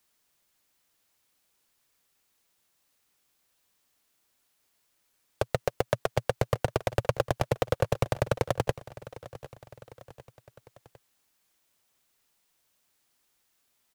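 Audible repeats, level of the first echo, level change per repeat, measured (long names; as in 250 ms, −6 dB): 3, −17.5 dB, −5.0 dB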